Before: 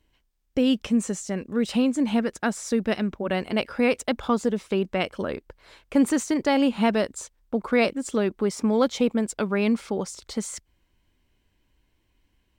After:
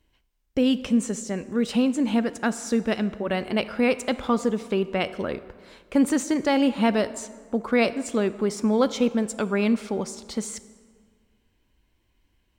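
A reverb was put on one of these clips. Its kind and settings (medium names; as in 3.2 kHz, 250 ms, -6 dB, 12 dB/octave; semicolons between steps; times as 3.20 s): plate-style reverb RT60 1.8 s, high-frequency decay 0.6×, DRR 13.5 dB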